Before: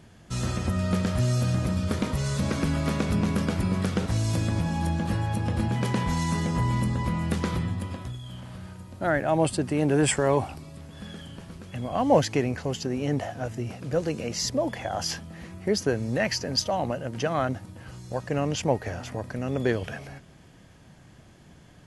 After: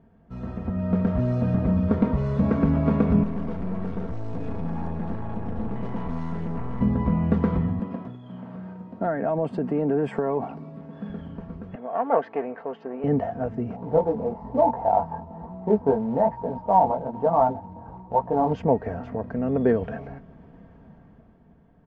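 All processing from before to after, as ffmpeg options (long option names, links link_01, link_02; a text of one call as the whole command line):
ffmpeg -i in.wav -filter_complex "[0:a]asettb=1/sr,asplit=3[link_01][link_02][link_03];[link_01]atrim=end=3.234[link_04];[link_02]atrim=start=3.23:end=6.81,asetpts=PTS-STARTPTS,afade=type=in:duration=0.004:curve=qsin,afade=type=out:start_time=3.576:duration=0.004:curve=qsin,lowpass=7600,aemphasis=mode=production:type=50fm,aeval=exprs='(tanh(44.7*val(0)+0.75)-tanh(0.75))/44.7':channel_layout=same[link_05];[link_03]atrim=start=6.806[link_06];[link_04][link_05]acrossfade=duration=0.004:curve1=hsin:curve2=qsin[link_07];[link_07][link_06]acrossfade=duration=0.004:curve1=qsin:curve2=hsin,asettb=1/sr,asplit=3[link_08][link_09][link_10];[link_08]atrim=end=7.794[link_11];[link_09]atrim=start=7.79:end=11.1,asetpts=PTS-STARTPTS,afade=type=in:duration=0.004:curve=qsin,afade=type=out:start_time=3.306:duration=0.004:curve=qsin,highpass=frequency=140:width=0.5412,highpass=frequency=140:width=1.3066,acompressor=threshold=-25dB:ratio=6:attack=3.2:release=140:knee=1:detection=peak[link_12];[link_10]atrim=start=11.096[link_13];[link_11][link_12]acrossfade=duration=0.004:curve1=hsin:curve2=qsin[link_14];[link_14][link_13]acrossfade=duration=0.004:curve1=qsin:curve2=hsin,asettb=1/sr,asplit=3[link_15][link_16][link_17];[link_15]atrim=end=11.754[link_18];[link_16]atrim=start=11.75:end=13.04,asetpts=PTS-STARTPTS,afade=type=in:duration=0.004:curve=qsin,afade=type=out:start_time=1.286:duration=0.004:curve=qsin,aeval=exprs='clip(val(0),-1,0.0376)':channel_layout=same,highpass=520,lowpass=2800[link_19];[link_17]atrim=start=13.036[link_20];[link_18][link_19]acrossfade=duration=0.004:curve1=hsin:curve2=qsin[link_21];[link_21][link_20]acrossfade=duration=0.004:curve1=qsin:curve2=hsin,asettb=1/sr,asplit=3[link_22][link_23][link_24];[link_22]atrim=end=13.764[link_25];[link_23]atrim=start=13.76:end=18.53,asetpts=PTS-STARTPTS,afade=type=in:duration=0.004:curve=qsin,afade=type=out:start_time=4.766:duration=0.004:curve=qsin,flanger=delay=16.5:depth=6.7:speed=1.1,lowpass=frequency=890:width_type=q:width=9.5,acrusher=bits=4:mode=log:mix=0:aa=0.000001[link_26];[link_24]atrim=start=18.526[link_27];[link_25][link_26]acrossfade=duration=0.004:curve1=hsin:curve2=qsin[link_28];[link_28][link_27]acrossfade=duration=0.004:curve1=qsin:curve2=hsin,lowpass=1000,aecho=1:1:4.4:0.51,dynaudnorm=framelen=110:gausssize=17:maxgain=10dB,volume=-4.5dB" out.wav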